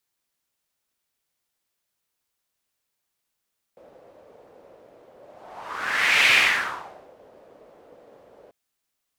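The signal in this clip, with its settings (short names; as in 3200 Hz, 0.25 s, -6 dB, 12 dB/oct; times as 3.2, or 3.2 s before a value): whoosh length 4.74 s, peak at 2.54, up 1.19 s, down 0.87 s, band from 530 Hz, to 2400 Hz, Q 3.5, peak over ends 34 dB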